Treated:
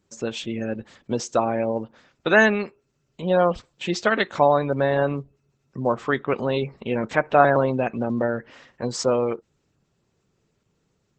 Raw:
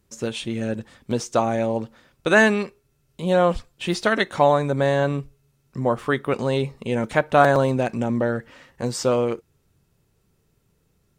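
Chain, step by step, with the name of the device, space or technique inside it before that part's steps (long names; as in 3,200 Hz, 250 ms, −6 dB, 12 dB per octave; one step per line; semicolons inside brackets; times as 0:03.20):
noise-suppressed video call (high-pass filter 150 Hz 6 dB per octave; gate on every frequency bin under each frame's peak −30 dB strong; Opus 12 kbit/s 48,000 Hz)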